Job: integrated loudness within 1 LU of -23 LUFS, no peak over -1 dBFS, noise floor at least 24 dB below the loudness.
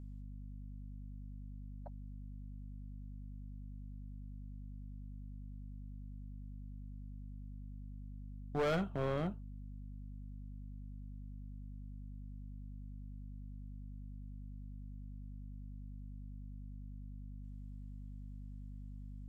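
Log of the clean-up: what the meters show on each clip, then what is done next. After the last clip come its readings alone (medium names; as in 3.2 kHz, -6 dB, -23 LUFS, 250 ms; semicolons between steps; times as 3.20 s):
clipped samples 0.4%; clipping level -29.5 dBFS; hum 50 Hz; highest harmonic 250 Hz; hum level -45 dBFS; loudness -47.0 LUFS; peak level -29.5 dBFS; loudness target -23.0 LUFS
-> clip repair -29.5 dBFS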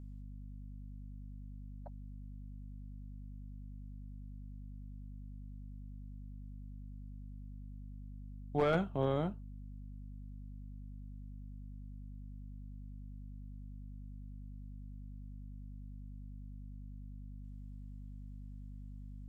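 clipped samples 0.0%; hum 50 Hz; highest harmonic 250 Hz; hum level -45 dBFS
-> de-hum 50 Hz, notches 5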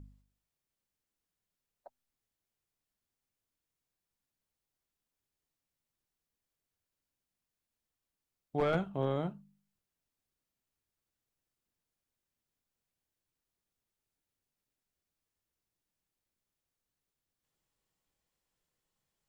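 hum not found; loudness -34.5 LUFS; peak level -20.0 dBFS; loudness target -23.0 LUFS
-> trim +11.5 dB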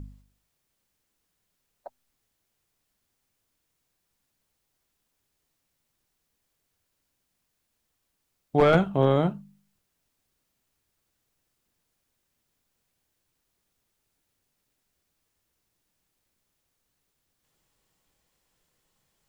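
loudness -23.0 LUFS; peak level -8.5 dBFS; noise floor -78 dBFS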